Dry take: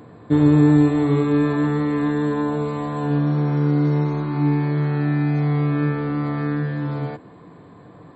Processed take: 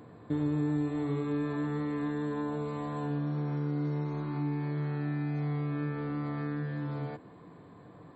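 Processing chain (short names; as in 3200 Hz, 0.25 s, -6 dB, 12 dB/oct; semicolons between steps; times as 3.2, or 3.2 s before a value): compressor 2:1, threshold -26 dBFS, peak gain reduction 9 dB; gain -7.5 dB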